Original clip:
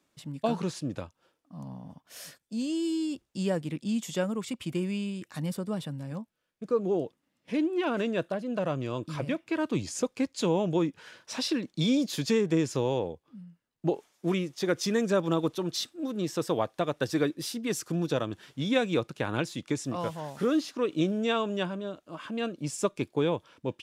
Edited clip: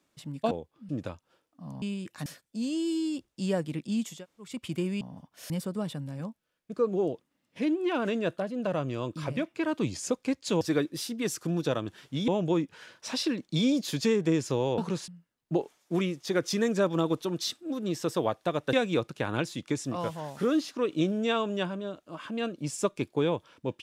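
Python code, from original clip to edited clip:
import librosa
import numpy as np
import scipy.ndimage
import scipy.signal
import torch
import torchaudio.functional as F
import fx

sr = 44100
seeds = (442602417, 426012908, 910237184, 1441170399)

y = fx.edit(x, sr, fx.swap(start_s=0.51, length_s=0.3, other_s=13.03, other_length_s=0.38),
    fx.swap(start_s=1.74, length_s=0.49, other_s=4.98, other_length_s=0.44),
    fx.room_tone_fill(start_s=4.11, length_s=0.35, crossfade_s=0.24),
    fx.move(start_s=17.06, length_s=1.67, to_s=10.53), tone=tone)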